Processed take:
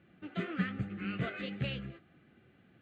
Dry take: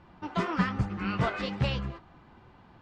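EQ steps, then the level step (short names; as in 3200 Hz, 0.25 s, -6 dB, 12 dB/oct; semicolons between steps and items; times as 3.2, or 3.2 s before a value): BPF 130–6500 Hz; fixed phaser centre 2300 Hz, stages 4; -4.0 dB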